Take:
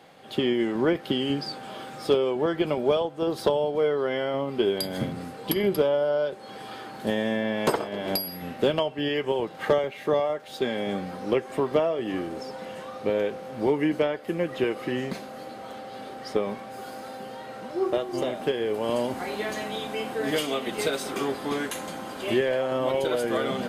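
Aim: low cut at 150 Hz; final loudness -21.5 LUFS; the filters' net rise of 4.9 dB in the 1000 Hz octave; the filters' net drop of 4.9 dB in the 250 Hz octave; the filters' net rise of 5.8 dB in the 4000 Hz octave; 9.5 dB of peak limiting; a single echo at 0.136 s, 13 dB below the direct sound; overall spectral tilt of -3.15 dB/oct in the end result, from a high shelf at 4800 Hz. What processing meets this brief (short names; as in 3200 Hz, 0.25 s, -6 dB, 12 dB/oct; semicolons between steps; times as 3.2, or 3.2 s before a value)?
HPF 150 Hz; bell 250 Hz -7 dB; bell 1000 Hz +6.5 dB; bell 4000 Hz +6 dB; high shelf 4800 Hz +3 dB; limiter -17.5 dBFS; echo 0.136 s -13 dB; gain +7 dB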